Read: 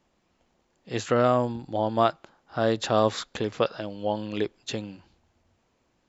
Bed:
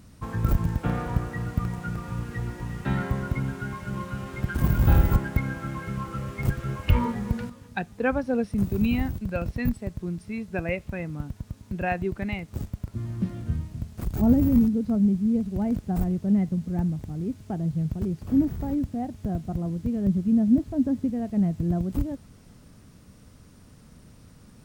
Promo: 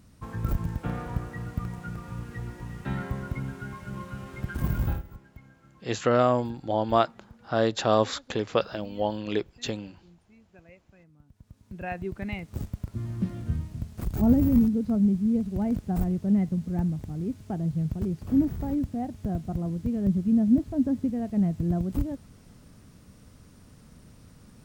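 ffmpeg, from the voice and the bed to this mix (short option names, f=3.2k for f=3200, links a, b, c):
-filter_complex "[0:a]adelay=4950,volume=0dB[a];[1:a]volume=18.5dB,afade=t=out:st=4.79:d=0.24:silence=0.105925,afade=t=in:st=11.26:d=1.37:silence=0.0668344[b];[a][b]amix=inputs=2:normalize=0"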